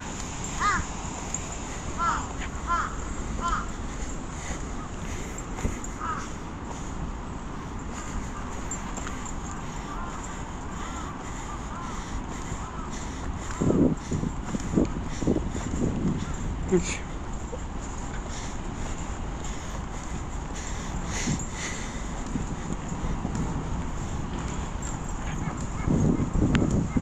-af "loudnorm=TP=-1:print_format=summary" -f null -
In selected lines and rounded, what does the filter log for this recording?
Input Integrated:    -30.7 LUFS
Input True Peak:      -5.2 dBTP
Input LRA:             7.1 LU
Input Threshold:     -40.7 LUFS